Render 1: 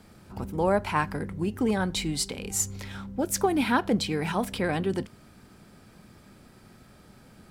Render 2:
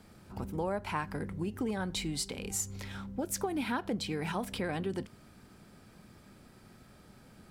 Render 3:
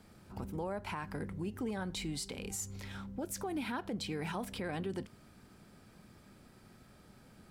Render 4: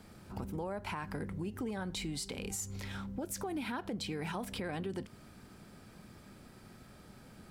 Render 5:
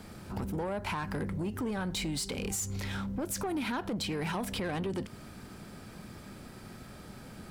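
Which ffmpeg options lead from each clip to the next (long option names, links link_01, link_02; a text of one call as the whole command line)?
ffmpeg -i in.wav -af "acompressor=threshold=-28dB:ratio=3,volume=-3.5dB" out.wav
ffmpeg -i in.wav -af "alimiter=level_in=3dB:limit=-24dB:level=0:latency=1:release=33,volume=-3dB,volume=-2.5dB" out.wav
ffmpeg -i in.wav -af "acompressor=threshold=-42dB:ratio=2,volume=4dB" out.wav
ffmpeg -i in.wav -af "asoftclip=type=tanh:threshold=-35.5dB,volume=7.5dB" out.wav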